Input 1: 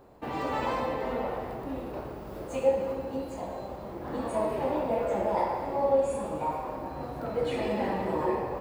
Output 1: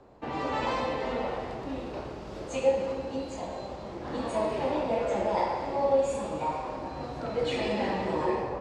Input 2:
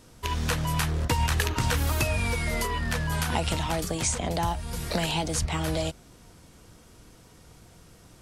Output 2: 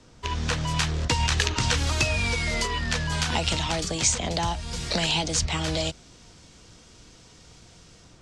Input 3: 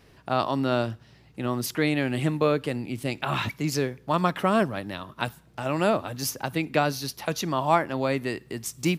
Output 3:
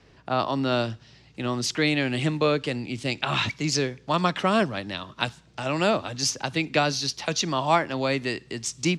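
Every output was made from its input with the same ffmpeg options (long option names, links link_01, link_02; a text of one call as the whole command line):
ffmpeg -i in.wav -filter_complex "[0:a]lowpass=frequency=7200:width=0.5412,lowpass=frequency=7200:width=1.3066,acrossover=split=150|780|2500[link_01][link_02][link_03][link_04];[link_04]dynaudnorm=framelen=420:gausssize=3:maxgain=8dB[link_05];[link_01][link_02][link_03][link_05]amix=inputs=4:normalize=0" out.wav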